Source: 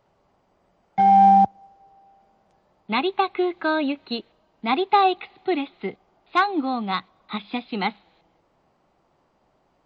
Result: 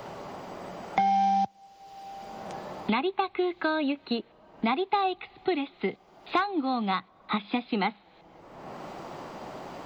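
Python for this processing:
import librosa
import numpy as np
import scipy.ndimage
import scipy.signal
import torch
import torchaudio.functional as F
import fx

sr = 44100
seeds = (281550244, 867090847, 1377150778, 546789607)

y = fx.band_squash(x, sr, depth_pct=100)
y = y * librosa.db_to_amplitude(-5.0)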